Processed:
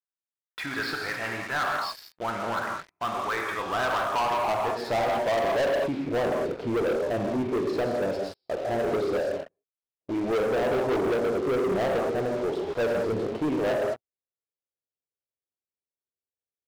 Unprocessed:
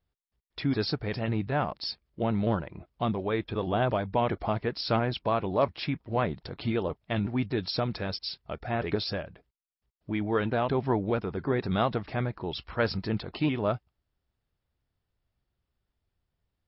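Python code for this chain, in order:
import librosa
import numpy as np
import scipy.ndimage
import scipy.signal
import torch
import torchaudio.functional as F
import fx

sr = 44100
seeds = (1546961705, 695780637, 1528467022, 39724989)

y = fx.filter_sweep_bandpass(x, sr, from_hz=1500.0, to_hz=480.0, start_s=3.56, end_s=5.76, q=2.4)
y = fx.rev_gated(y, sr, seeds[0], gate_ms=240, shape='flat', drr_db=1.5)
y = fx.leveller(y, sr, passes=5)
y = F.gain(torch.from_numpy(y), -5.0).numpy()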